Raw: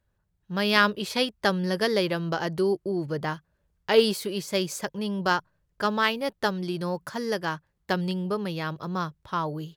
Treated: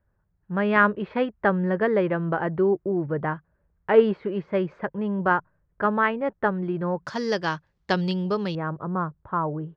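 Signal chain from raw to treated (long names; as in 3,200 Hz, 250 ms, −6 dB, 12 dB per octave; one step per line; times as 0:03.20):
low-pass filter 1,900 Hz 24 dB per octave, from 0:07.05 6,100 Hz, from 0:08.55 1,500 Hz
level +3 dB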